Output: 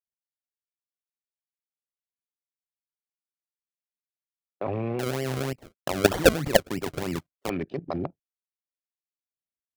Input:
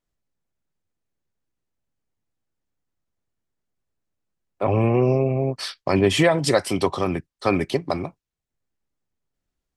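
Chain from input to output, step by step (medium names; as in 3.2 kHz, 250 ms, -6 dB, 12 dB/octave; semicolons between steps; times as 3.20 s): local Wiener filter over 41 samples; low-pass 4.2 kHz 12 dB/octave; gate -44 dBFS, range -23 dB; high-pass 120 Hz 6 dB/octave; level held to a coarse grid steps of 16 dB; 4.99–7.50 s: decimation with a swept rate 34×, swing 100% 3.2 Hz; trim +3 dB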